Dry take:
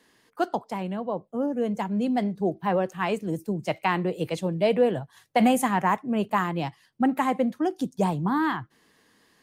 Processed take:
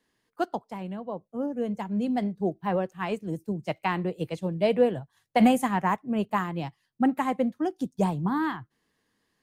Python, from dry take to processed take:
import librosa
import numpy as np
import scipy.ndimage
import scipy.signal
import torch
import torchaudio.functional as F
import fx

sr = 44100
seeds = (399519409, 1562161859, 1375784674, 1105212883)

y = fx.low_shelf(x, sr, hz=120.0, db=9.0)
y = fx.upward_expand(y, sr, threshold_db=-41.0, expansion=1.5)